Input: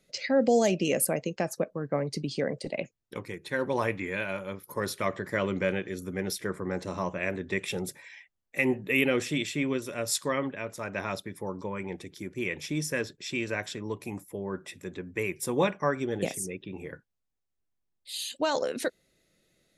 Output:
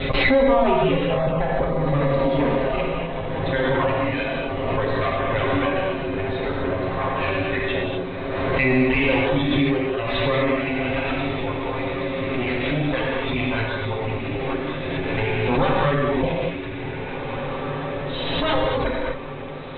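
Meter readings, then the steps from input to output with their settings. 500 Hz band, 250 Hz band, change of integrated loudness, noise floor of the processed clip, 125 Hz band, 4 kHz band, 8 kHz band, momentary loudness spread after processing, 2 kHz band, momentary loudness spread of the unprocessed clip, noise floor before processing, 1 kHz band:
+8.5 dB, +8.5 dB, +8.0 dB, −30 dBFS, +12.0 dB, +8.0 dB, below −40 dB, 9 LU, +8.5 dB, 13 LU, −80 dBFS, +11.5 dB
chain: lower of the sound and its delayed copy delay 7.5 ms
reverb reduction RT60 1.7 s
Chebyshev low-pass filter 3,900 Hz, order 8
reverb reduction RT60 1.6 s
mains-hum notches 60/120/180/240/300/360 Hz
feedback delay with all-pass diffusion 1,889 ms, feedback 58%, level −8 dB
reverb whose tail is shaped and stops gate 280 ms flat, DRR −3.5 dB
in parallel at −3 dB: brickwall limiter −21.5 dBFS, peak gain reduction 9.5 dB
on the sum: low-shelf EQ 190 Hz +8.5 dB
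background raised ahead of every attack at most 24 dB per second
level +1.5 dB

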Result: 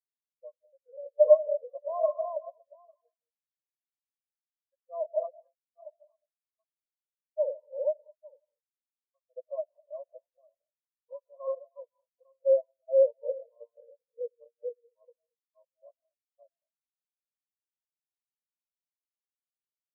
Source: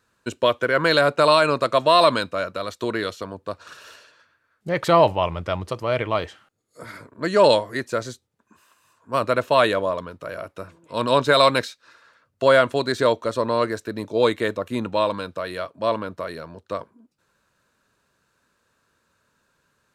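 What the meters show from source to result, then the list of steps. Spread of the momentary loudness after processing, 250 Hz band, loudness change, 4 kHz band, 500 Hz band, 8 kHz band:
21 LU, below −40 dB, −8.5 dB, below −40 dB, −9.0 dB, below −35 dB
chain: feedback delay that plays each chunk backwards 425 ms, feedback 57%, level 0 dB
noise reduction from a noise print of the clip's start 24 dB
brick-wall band-pass 450–1,200 Hz
spectral tilt −3 dB per octave
centre clipping without the shift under −19 dBFS
reverb whose tail is shaped and stops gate 260 ms rising, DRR 5 dB
every bin expanded away from the loudest bin 4 to 1
level −8 dB

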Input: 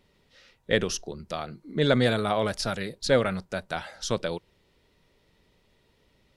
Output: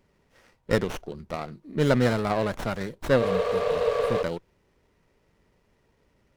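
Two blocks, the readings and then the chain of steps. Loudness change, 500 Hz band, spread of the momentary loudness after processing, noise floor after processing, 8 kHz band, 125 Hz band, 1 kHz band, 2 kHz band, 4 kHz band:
+1.5 dB, +2.5 dB, 13 LU, −68 dBFS, −8.5 dB, +2.0 dB, +1.5 dB, −1.5 dB, −6.5 dB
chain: healed spectral selection 0:03.24–0:04.20, 400–9,000 Hz before
windowed peak hold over 9 samples

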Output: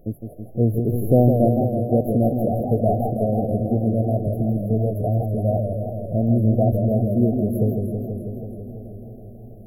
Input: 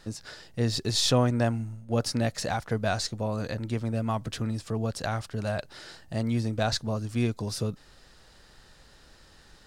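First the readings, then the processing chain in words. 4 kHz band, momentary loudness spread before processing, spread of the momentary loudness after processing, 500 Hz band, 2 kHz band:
below −40 dB, 10 LU, 15 LU, +10.0 dB, below −40 dB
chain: brick-wall band-stop 750–11,000 Hz
bucket-brigade delay 377 ms, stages 4,096, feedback 76%, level −22.5 dB
feedback echo with a swinging delay time 163 ms, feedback 78%, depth 135 cents, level −6 dB
level +8 dB

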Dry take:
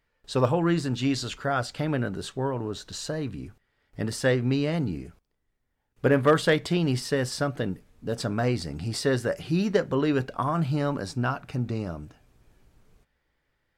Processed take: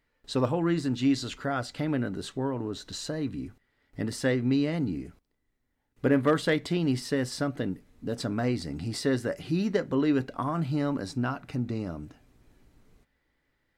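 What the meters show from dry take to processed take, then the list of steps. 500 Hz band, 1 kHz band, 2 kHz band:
−4.0 dB, −4.5 dB, −4.0 dB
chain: in parallel at −2.5 dB: downward compressor, threshold −36 dBFS, peak gain reduction 19.5 dB
on the sum: hollow resonant body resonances 270/2,000/4,000 Hz, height 7 dB, ringing for 30 ms
level −6 dB

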